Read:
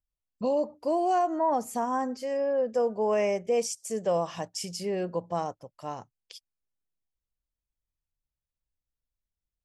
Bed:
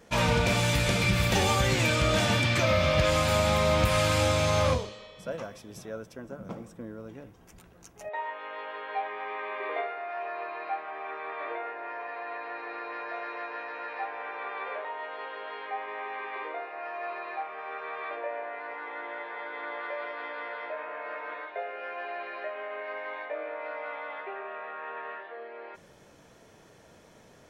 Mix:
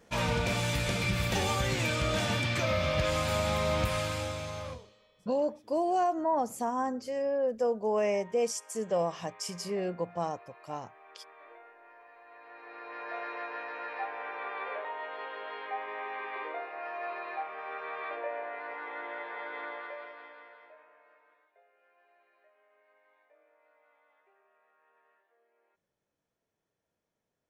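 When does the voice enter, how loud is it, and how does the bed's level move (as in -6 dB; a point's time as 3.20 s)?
4.85 s, -2.5 dB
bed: 3.82 s -5 dB
4.81 s -17.5 dB
12.24 s -17.5 dB
13.15 s -1.5 dB
19.59 s -1.5 dB
21.44 s -30.5 dB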